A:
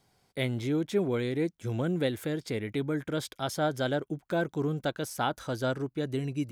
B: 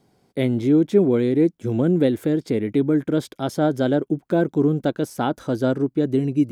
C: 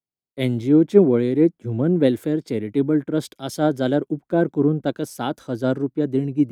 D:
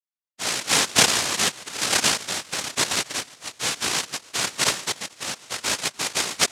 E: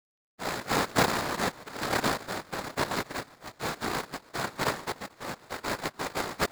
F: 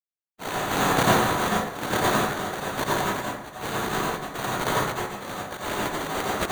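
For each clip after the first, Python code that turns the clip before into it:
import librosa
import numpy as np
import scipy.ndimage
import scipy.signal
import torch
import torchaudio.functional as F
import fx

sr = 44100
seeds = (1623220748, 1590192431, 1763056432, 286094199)

y1 = fx.peak_eq(x, sr, hz=280.0, db=13.5, octaves=2.4)
y2 = fx.band_widen(y1, sr, depth_pct=100)
y3 = fx.chord_vocoder(y2, sr, chord='minor triad', root=54)
y3 = fx.echo_feedback(y3, sr, ms=147, feedback_pct=59, wet_db=-19)
y3 = fx.noise_vocoder(y3, sr, seeds[0], bands=1)
y3 = F.gain(torch.from_numpy(y3), -4.5).numpy()
y4 = scipy.signal.medfilt(y3, 15)
y5 = fx.sample_hold(y4, sr, seeds[1], rate_hz=5200.0, jitter_pct=0)
y5 = fx.rev_plate(y5, sr, seeds[2], rt60_s=0.73, hf_ratio=0.6, predelay_ms=75, drr_db=-4.5)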